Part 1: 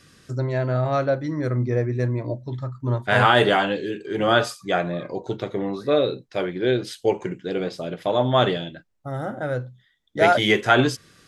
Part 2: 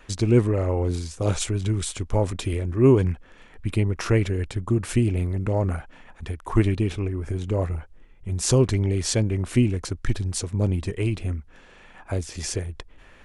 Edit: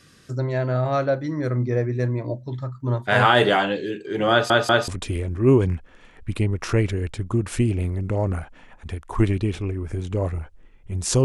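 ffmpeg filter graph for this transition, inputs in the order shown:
ffmpeg -i cue0.wav -i cue1.wav -filter_complex "[0:a]apad=whole_dur=11.24,atrim=end=11.24,asplit=3[link_01][link_02][link_03];[link_01]atrim=end=4.502[link_04];[link_02]atrim=start=4.308:end=4.502[link_05];[link_03]atrim=start=4.308:end=4.502[link_06];[1:a]atrim=start=2.248:end=8.61[link_07];[link_04][link_05]acrossfade=duration=0.004:curve1=hsin:curve2=hsin[link_08];[link_08][link_06]acrossfade=duration=0.004:curve1=hsin:curve2=hsin[link_09];[link_09][link_07]acrossfade=duration=0.004:curve1=hsin:curve2=hsin" out.wav

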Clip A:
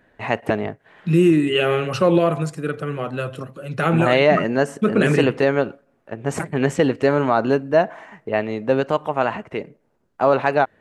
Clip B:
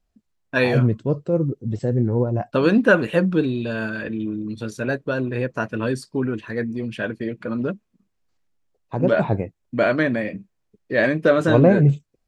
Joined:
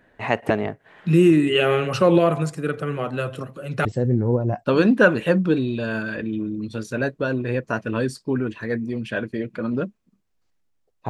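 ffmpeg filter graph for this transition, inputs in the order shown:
ffmpeg -i cue0.wav -i cue1.wav -filter_complex "[0:a]apad=whole_dur=11.09,atrim=end=11.09,atrim=end=3.852[link_01];[1:a]atrim=start=1.718:end=8.96[link_02];[link_01][link_02]acrossfade=duration=0.004:curve1=hsin:curve2=hsin" out.wav

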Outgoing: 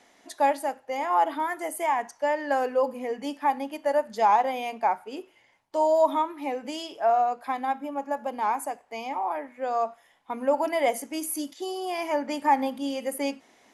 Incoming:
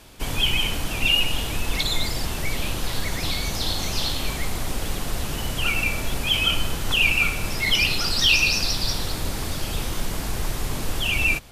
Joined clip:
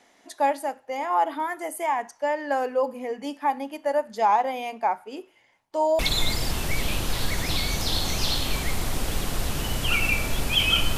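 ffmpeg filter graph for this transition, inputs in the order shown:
ffmpeg -i cue0.wav -i cue1.wav -filter_complex "[0:a]apad=whole_dur=10.97,atrim=end=10.97,atrim=end=5.992[link_01];[1:a]atrim=start=1.728:end=6.71[link_02];[link_01][link_02]acrossfade=duration=0.004:curve1=hsin:curve2=hsin" out.wav

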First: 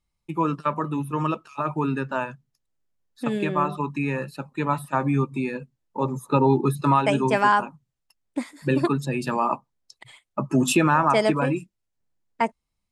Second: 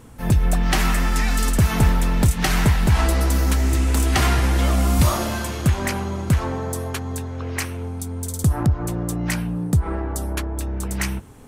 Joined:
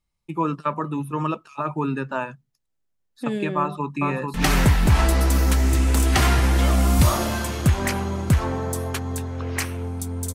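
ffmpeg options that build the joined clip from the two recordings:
ffmpeg -i cue0.wav -i cue1.wav -filter_complex "[0:a]apad=whole_dur=10.34,atrim=end=10.34,atrim=end=4.342[link_01];[1:a]atrim=start=2.338:end=8.34[link_02];[link_01][link_02]acrossfade=duration=0.004:curve1=hsin:curve2=hsin,asplit=2[link_03][link_04];[link_04]afade=type=in:start_time=3.57:duration=0.01,afade=type=out:start_time=4.34:duration=0.01,aecho=0:1:440|880|1320|1760|2200|2640|3080:0.668344|0.334172|0.167086|0.083543|0.0417715|0.0208857|0.0104429[link_05];[link_03][link_05]amix=inputs=2:normalize=0" out.wav

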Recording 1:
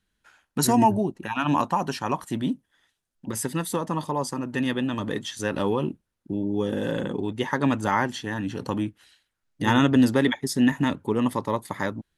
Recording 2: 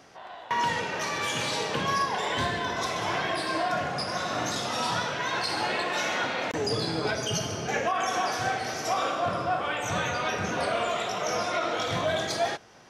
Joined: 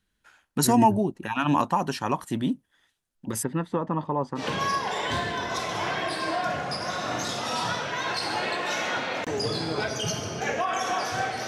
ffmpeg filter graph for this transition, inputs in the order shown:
ffmpeg -i cue0.wav -i cue1.wav -filter_complex "[0:a]asplit=3[link_01][link_02][link_03];[link_01]afade=type=out:start_time=3.42:duration=0.02[link_04];[link_02]lowpass=1800,afade=type=in:start_time=3.42:duration=0.02,afade=type=out:start_time=4.45:duration=0.02[link_05];[link_03]afade=type=in:start_time=4.45:duration=0.02[link_06];[link_04][link_05][link_06]amix=inputs=3:normalize=0,apad=whole_dur=11.47,atrim=end=11.47,atrim=end=4.45,asetpts=PTS-STARTPTS[link_07];[1:a]atrim=start=1.62:end=8.74,asetpts=PTS-STARTPTS[link_08];[link_07][link_08]acrossfade=duration=0.1:curve1=tri:curve2=tri" out.wav

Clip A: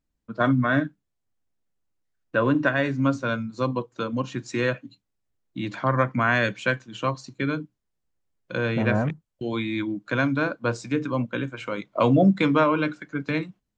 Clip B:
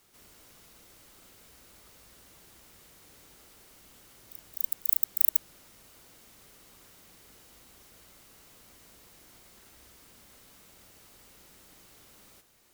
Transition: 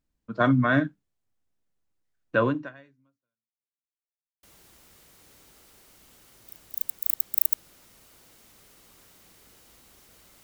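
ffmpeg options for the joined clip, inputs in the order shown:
ffmpeg -i cue0.wav -i cue1.wav -filter_complex "[0:a]apad=whole_dur=10.43,atrim=end=10.43,asplit=2[link_01][link_02];[link_01]atrim=end=3.75,asetpts=PTS-STARTPTS,afade=type=out:start_time=2.44:duration=1.31:curve=exp[link_03];[link_02]atrim=start=3.75:end=4.43,asetpts=PTS-STARTPTS,volume=0[link_04];[1:a]atrim=start=2.26:end=8.26,asetpts=PTS-STARTPTS,afade=type=in:duration=0.004:curve=hsin[link_05];[link_03][link_04][link_05]concat=n=3:v=0:a=1" out.wav

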